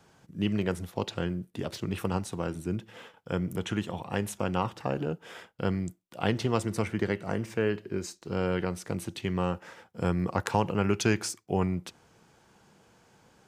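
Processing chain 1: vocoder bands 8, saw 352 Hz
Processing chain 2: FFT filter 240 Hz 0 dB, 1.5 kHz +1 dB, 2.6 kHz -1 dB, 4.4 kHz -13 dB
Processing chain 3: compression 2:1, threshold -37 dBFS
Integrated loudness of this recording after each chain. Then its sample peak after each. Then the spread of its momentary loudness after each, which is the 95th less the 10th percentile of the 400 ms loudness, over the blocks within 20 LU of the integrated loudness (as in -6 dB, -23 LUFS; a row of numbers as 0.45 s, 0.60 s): -32.5 LUFS, -31.5 LUFS, -38.5 LUFS; -15.5 dBFS, -10.5 dBFS, -16.5 dBFS; 10 LU, 9 LU, 5 LU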